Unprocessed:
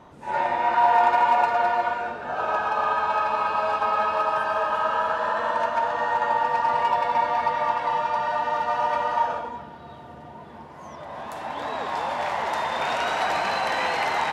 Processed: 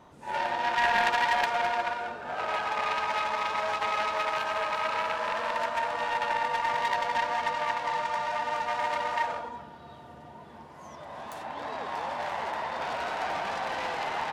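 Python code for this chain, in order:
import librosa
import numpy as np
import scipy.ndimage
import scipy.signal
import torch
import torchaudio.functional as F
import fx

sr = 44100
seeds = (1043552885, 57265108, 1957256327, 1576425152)

y = fx.self_delay(x, sr, depth_ms=0.3)
y = fx.high_shelf(y, sr, hz=4300.0, db=fx.steps((0.0, 7.0), (11.42, -3.5), (12.5, -11.0)))
y = y * librosa.db_to_amplitude(-5.5)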